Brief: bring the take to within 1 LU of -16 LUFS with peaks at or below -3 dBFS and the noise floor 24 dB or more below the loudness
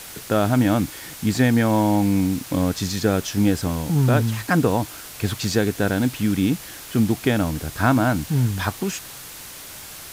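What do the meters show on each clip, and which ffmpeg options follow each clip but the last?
noise floor -39 dBFS; noise floor target -46 dBFS; loudness -21.5 LUFS; peak -6.5 dBFS; loudness target -16.0 LUFS
-> -af "afftdn=nr=7:nf=-39"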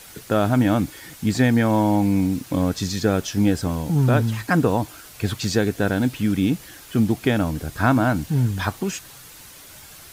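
noise floor -44 dBFS; noise floor target -46 dBFS
-> -af "afftdn=nr=6:nf=-44"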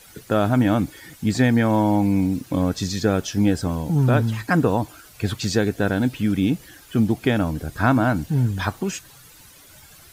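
noise floor -48 dBFS; loudness -21.5 LUFS; peak -6.5 dBFS; loudness target -16.0 LUFS
-> -af "volume=5.5dB,alimiter=limit=-3dB:level=0:latency=1"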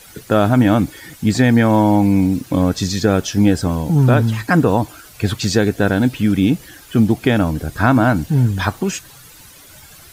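loudness -16.5 LUFS; peak -3.0 dBFS; noise floor -43 dBFS

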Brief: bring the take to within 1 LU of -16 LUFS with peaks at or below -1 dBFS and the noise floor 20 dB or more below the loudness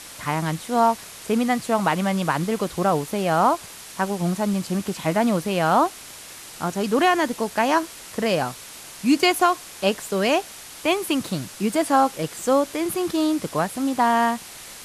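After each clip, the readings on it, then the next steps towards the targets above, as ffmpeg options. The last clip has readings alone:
noise floor -41 dBFS; noise floor target -43 dBFS; loudness -22.5 LUFS; peak -6.0 dBFS; loudness target -16.0 LUFS
-> -af "afftdn=nr=6:nf=-41"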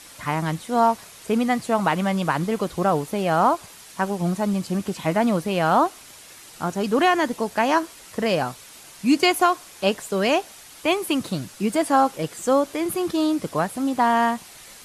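noise floor -45 dBFS; loudness -22.5 LUFS; peak -6.5 dBFS; loudness target -16.0 LUFS
-> -af "volume=6.5dB,alimiter=limit=-1dB:level=0:latency=1"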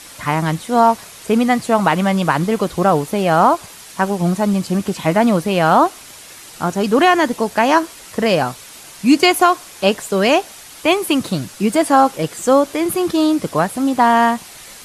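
loudness -16.5 LUFS; peak -1.0 dBFS; noise floor -39 dBFS

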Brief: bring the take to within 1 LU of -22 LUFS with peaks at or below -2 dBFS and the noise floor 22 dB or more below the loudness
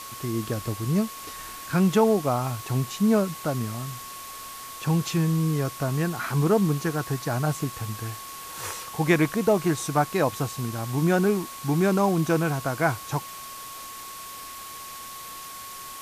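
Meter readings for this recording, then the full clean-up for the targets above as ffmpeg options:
steady tone 1100 Hz; tone level -40 dBFS; noise floor -40 dBFS; noise floor target -48 dBFS; loudness -25.5 LUFS; peak -8.0 dBFS; loudness target -22.0 LUFS
-> -af "bandreject=f=1.1k:w=30"
-af "afftdn=nr=8:nf=-40"
-af "volume=3.5dB"

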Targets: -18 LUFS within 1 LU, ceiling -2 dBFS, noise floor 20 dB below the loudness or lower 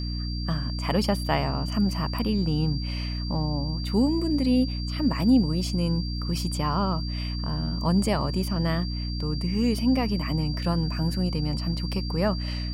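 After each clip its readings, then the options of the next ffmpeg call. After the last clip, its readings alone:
hum 60 Hz; harmonics up to 300 Hz; hum level -28 dBFS; steady tone 4700 Hz; tone level -37 dBFS; loudness -26.0 LUFS; peak -10.0 dBFS; loudness target -18.0 LUFS
-> -af "bandreject=f=60:t=h:w=6,bandreject=f=120:t=h:w=6,bandreject=f=180:t=h:w=6,bandreject=f=240:t=h:w=6,bandreject=f=300:t=h:w=6"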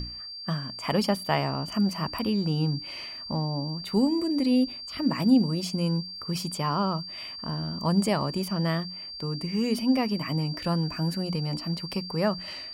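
hum none; steady tone 4700 Hz; tone level -37 dBFS
-> -af "bandreject=f=4.7k:w=30"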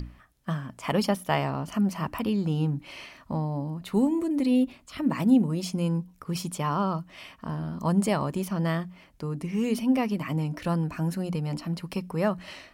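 steady tone none; loudness -28.0 LUFS; peak -10.0 dBFS; loudness target -18.0 LUFS
-> -af "volume=10dB,alimiter=limit=-2dB:level=0:latency=1"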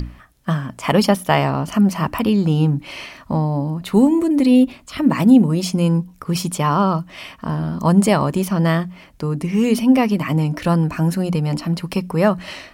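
loudness -18.0 LUFS; peak -2.0 dBFS; noise floor -46 dBFS

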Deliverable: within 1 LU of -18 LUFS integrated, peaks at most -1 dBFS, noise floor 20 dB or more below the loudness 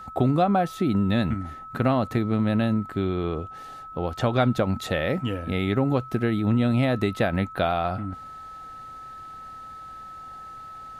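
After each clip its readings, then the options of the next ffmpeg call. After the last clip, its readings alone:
steady tone 1300 Hz; tone level -38 dBFS; loudness -25.0 LUFS; peak -9.5 dBFS; loudness target -18.0 LUFS
-> -af "bandreject=f=1.3k:w=30"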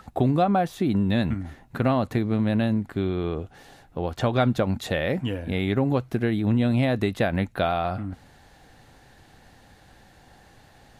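steady tone none; loudness -25.0 LUFS; peak -10.0 dBFS; loudness target -18.0 LUFS
-> -af "volume=7dB"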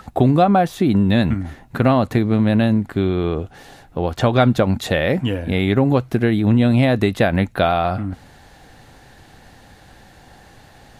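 loudness -18.0 LUFS; peak -3.0 dBFS; noise floor -47 dBFS

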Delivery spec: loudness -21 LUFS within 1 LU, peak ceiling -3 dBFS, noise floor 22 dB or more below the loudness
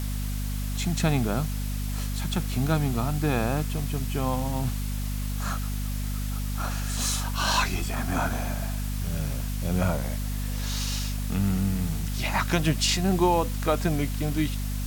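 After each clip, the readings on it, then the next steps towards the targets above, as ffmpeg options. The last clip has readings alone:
hum 50 Hz; harmonics up to 250 Hz; hum level -27 dBFS; noise floor -29 dBFS; noise floor target -50 dBFS; loudness -27.5 LUFS; peak -10.5 dBFS; loudness target -21.0 LUFS
-> -af "bandreject=f=50:t=h:w=4,bandreject=f=100:t=h:w=4,bandreject=f=150:t=h:w=4,bandreject=f=200:t=h:w=4,bandreject=f=250:t=h:w=4"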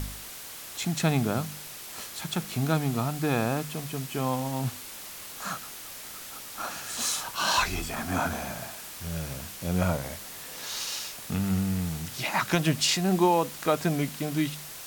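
hum none; noise floor -42 dBFS; noise floor target -52 dBFS
-> -af "afftdn=nr=10:nf=-42"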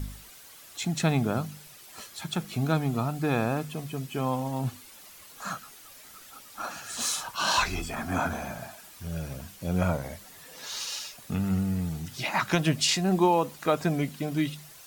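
noise floor -50 dBFS; noise floor target -51 dBFS
-> -af "afftdn=nr=6:nf=-50"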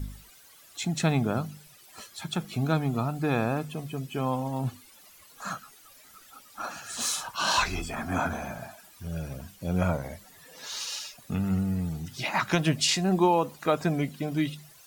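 noise floor -54 dBFS; loudness -29.0 LUFS; peak -11.5 dBFS; loudness target -21.0 LUFS
-> -af "volume=8dB"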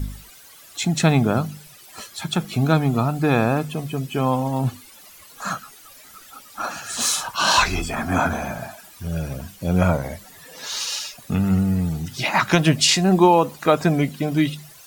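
loudness -21.0 LUFS; peak -3.5 dBFS; noise floor -46 dBFS

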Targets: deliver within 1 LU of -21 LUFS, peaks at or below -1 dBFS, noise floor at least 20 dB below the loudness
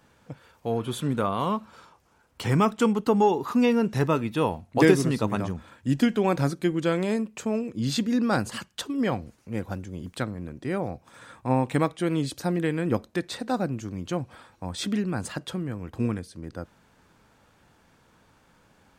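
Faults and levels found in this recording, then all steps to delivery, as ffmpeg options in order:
loudness -26.5 LUFS; peak -4.5 dBFS; loudness target -21.0 LUFS
-> -af "volume=5.5dB,alimiter=limit=-1dB:level=0:latency=1"

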